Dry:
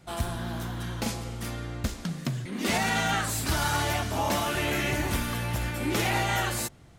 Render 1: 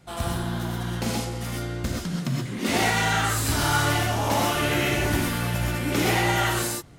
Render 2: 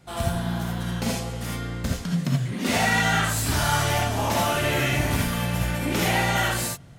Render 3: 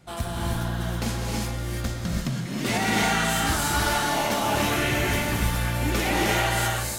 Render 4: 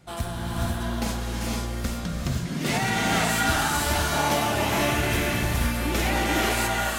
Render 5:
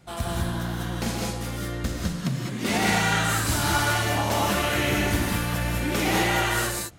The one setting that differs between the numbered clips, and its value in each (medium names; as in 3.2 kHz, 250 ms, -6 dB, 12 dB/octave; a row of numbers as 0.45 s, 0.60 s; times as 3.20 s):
gated-style reverb, gate: 150 ms, 100 ms, 360 ms, 540 ms, 230 ms